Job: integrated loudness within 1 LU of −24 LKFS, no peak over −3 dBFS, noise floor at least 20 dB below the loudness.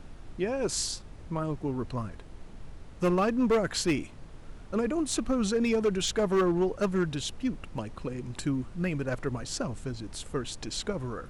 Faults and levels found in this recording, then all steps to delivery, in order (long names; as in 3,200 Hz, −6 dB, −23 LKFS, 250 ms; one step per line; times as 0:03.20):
share of clipped samples 1.2%; peaks flattened at −20.0 dBFS; background noise floor −47 dBFS; target noise floor −50 dBFS; integrated loudness −30.0 LKFS; sample peak −20.0 dBFS; target loudness −24.0 LKFS
→ clipped peaks rebuilt −20 dBFS
noise reduction from a noise print 6 dB
level +6 dB